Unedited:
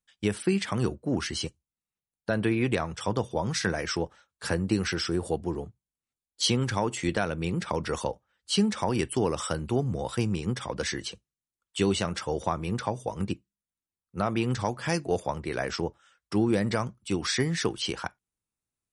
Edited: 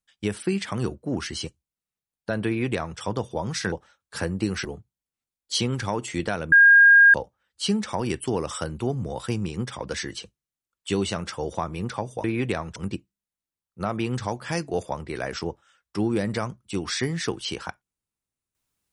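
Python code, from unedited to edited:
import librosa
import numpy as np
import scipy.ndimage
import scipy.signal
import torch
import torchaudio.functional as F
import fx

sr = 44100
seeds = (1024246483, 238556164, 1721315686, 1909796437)

y = fx.edit(x, sr, fx.duplicate(start_s=2.47, length_s=0.52, to_s=13.13),
    fx.cut(start_s=3.72, length_s=0.29),
    fx.cut(start_s=4.94, length_s=0.6),
    fx.bleep(start_s=7.41, length_s=0.62, hz=1620.0, db=-9.5), tone=tone)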